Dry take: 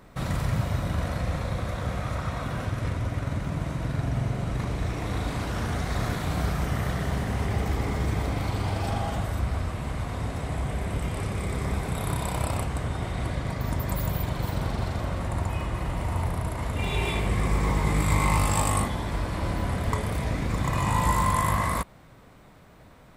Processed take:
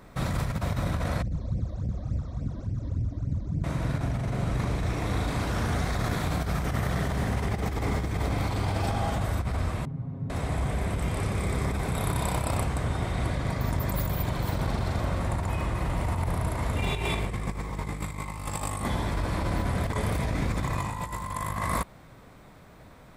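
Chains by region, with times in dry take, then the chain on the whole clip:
1.22–3.64 EQ curve 230 Hz 0 dB, 2100 Hz -23 dB, 6600 Hz -9 dB, 12000 Hz -28 dB + phaser stages 12, 3.5 Hz, lowest notch 130–1300 Hz
9.85–10.3 band-pass 170 Hz, Q 2.1 + comb 7.4 ms, depth 80%
whole clip: notch 2900 Hz, Q 23; negative-ratio compressor -27 dBFS, ratio -0.5

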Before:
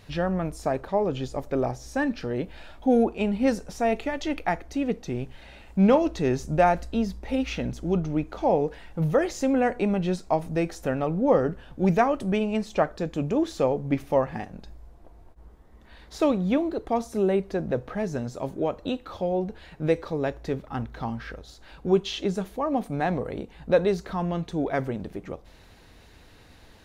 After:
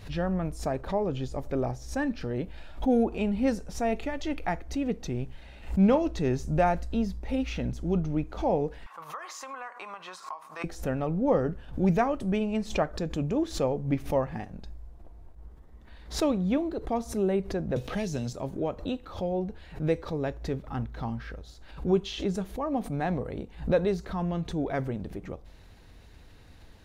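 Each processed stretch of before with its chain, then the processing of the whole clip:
8.86–10.64 resonant high-pass 1100 Hz, resonance Q 13 + compressor 5:1, threshold -31 dBFS
17.76–18.33 resonant high shelf 2200 Hz +9 dB, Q 1.5 + three-band squash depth 70%
whole clip: low shelf 160 Hz +8 dB; backwards sustainer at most 140 dB/s; gain -5 dB

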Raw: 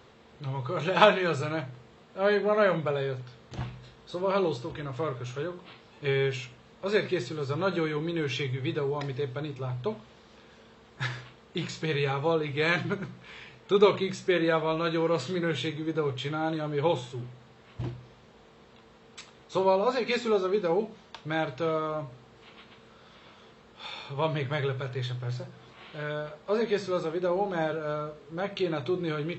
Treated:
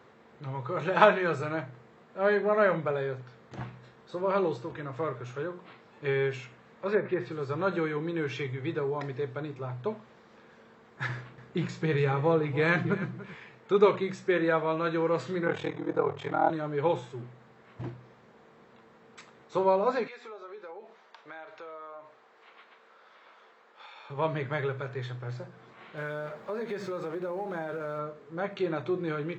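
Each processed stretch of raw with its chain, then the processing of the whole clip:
6.45–7.32 treble ducked by the level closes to 1100 Hz, closed at -21.5 dBFS + bell 2000 Hz +2.5 dB 1.7 oct
11.09–13.35 low shelf 260 Hz +8.5 dB + echo 0.287 s -16 dB
15.46–16.5 bell 760 Hz +11.5 dB 1.3 oct + ring modulator 20 Hz
20.07–24.1 BPF 570–6800 Hz + compressor 4:1, threshold -42 dBFS
25.97–27.99 G.711 law mismatch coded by mu + compressor 5:1, threshold -30 dBFS
whole clip: HPF 130 Hz; resonant high shelf 2400 Hz -6 dB, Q 1.5; gain -1 dB

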